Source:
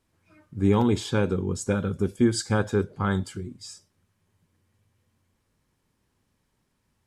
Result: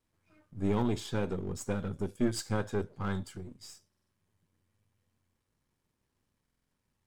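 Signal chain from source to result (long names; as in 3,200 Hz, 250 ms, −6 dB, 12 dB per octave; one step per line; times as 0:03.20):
gain on one half-wave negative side −7 dB
buffer that repeats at 0:03.88/0:06.44, samples 2,048, times 4
level −5.5 dB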